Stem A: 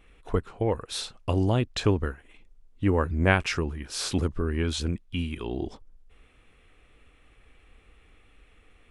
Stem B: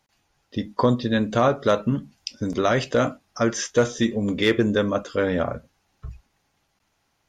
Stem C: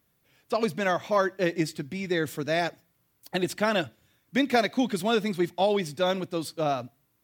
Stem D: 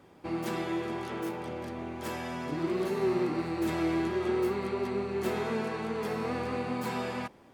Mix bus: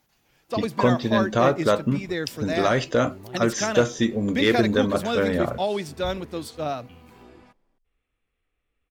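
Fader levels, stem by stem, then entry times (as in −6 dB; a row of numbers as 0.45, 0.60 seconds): −20.0, −0.5, −1.5, −18.5 decibels; 1.75, 0.00, 0.00, 0.25 seconds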